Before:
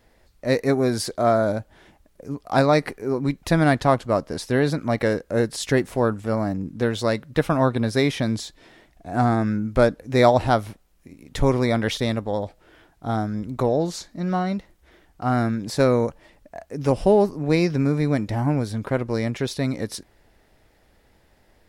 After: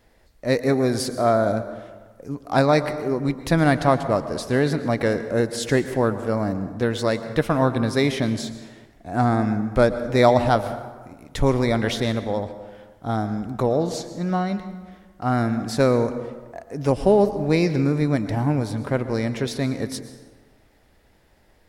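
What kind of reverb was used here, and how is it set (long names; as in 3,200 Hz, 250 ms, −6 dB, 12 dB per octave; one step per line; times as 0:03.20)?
dense smooth reverb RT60 1.4 s, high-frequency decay 0.55×, pre-delay 100 ms, DRR 11 dB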